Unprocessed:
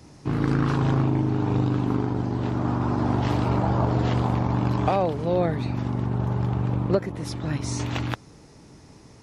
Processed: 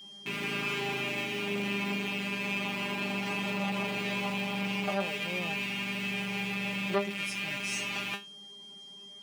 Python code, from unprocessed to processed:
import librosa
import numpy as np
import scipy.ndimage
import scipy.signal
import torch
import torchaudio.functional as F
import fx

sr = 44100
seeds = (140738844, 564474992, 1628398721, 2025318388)

y = fx.rattle_buzz(x, sr, strikes_db=-34.0, level_db=-14.0)
y = scipy.signal.sosfilt(scipy.signal.butter(4, 150.0, 'highpass', fs=sr, output='sos'), y)
y = fx.high_shelf(y, sr, hz=5900.0, db=9.0)
y = fx.comb_fb(y, sr, f0_hz=200.0, decay_s=0.22, harmonics='all', damping=0.0, mix_pct=100)
y = y + 10.0 ** (-49.0 / 20.0) * np.sin(2.0 * np.pi * 3200.0 * np.arange(len(y)) / sr)
y = fx.transformer_sat(y, sr, knee_hz=1000.0)
y = y * librosa.db_to_amplitude(2.5)